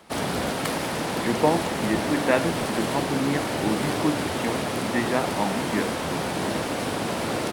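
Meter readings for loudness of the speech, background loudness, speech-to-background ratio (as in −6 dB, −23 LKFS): −28.0 LKFS, −27.0 LKFS, −1.0 dB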